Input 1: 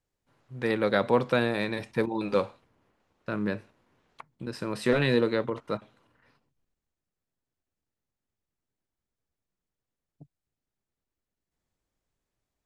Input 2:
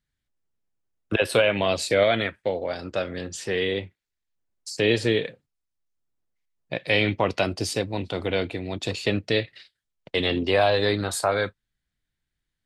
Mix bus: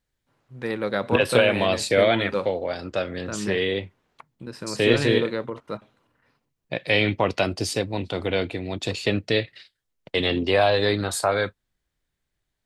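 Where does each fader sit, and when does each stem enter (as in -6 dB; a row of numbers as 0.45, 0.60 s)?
-1.0, +1.0 dB; 0.00, 0.00 s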